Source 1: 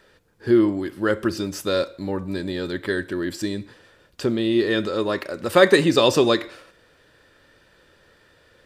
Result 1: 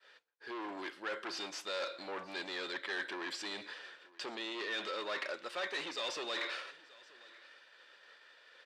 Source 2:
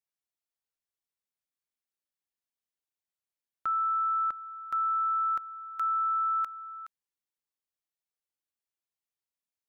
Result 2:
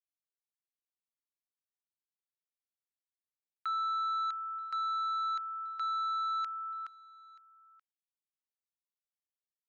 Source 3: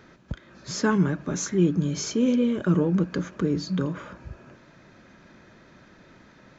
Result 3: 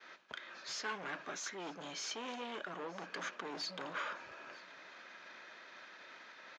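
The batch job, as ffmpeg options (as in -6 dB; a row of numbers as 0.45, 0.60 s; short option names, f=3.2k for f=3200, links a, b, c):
-af "agate=range=-33dB:threshold=-50dB:ratio=3:detection=peak,highshelf=f=2.1k:g=11.5,areverse,acompressor=threshold=-27dB:ratio=8,areverse,asoftclip=type=hard:threshold=-31dB,highpass=640,lowpass=3.6k,aecho=1:1:930:0.075"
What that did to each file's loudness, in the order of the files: -18.0, -5.0, -19.5 LU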